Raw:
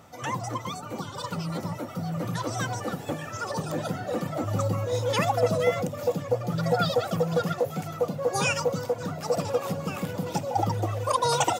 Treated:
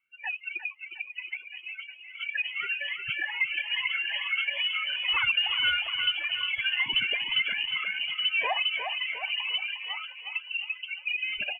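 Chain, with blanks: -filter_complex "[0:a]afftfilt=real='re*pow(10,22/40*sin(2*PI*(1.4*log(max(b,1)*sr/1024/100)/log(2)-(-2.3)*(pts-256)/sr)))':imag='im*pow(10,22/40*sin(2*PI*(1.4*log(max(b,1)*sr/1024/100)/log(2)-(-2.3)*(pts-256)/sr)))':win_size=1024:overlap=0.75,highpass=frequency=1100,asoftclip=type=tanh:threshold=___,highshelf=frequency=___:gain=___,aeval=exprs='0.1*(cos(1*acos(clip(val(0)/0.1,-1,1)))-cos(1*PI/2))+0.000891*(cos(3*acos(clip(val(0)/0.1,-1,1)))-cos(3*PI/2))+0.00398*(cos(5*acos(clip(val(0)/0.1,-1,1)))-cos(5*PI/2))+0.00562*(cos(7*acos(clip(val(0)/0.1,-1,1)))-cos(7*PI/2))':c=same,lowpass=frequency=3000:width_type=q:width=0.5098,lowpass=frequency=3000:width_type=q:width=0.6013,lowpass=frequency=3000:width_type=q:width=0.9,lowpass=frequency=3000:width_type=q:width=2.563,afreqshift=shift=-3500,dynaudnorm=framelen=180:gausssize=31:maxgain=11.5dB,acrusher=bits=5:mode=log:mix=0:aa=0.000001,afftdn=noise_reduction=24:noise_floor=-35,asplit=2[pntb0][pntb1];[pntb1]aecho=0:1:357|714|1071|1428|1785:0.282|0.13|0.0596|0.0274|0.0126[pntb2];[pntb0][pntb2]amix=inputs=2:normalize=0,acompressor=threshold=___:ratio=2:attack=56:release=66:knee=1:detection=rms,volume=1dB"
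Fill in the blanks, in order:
-19.5dB, 2500, -11.5, -34dB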